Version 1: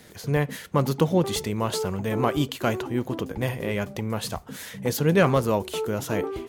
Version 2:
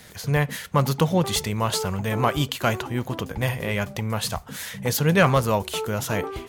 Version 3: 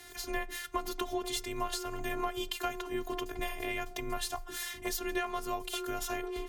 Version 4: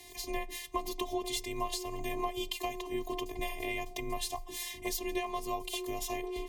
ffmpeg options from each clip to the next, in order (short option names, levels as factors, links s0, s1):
-af "equalizer=f=330:t=o:w=1.4:g=-9,volume=1.78"
-af "afftfilt=real='hypot(re,im)*cos(PI*b)':imag='0':win_size=512:overlap=0.75,acompressor=threshold=0.0316:ratio=6,afreqshift=21"
-af "asuperstop=centerf=1500:order=8:qfactor=2.4"